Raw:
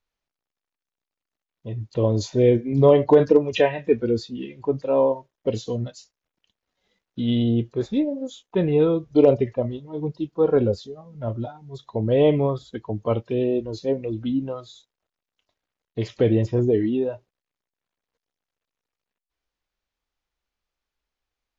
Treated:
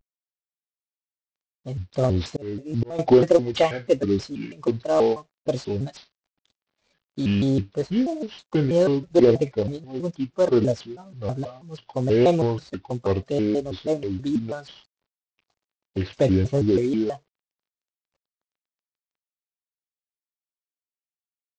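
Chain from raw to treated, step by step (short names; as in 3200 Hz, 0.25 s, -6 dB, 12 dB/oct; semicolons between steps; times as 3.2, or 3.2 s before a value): CVSD 32 kbps; 1.98–2.99 auto swell 0.676 s; shaped vibrato square 3.1 Hz, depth 250 cents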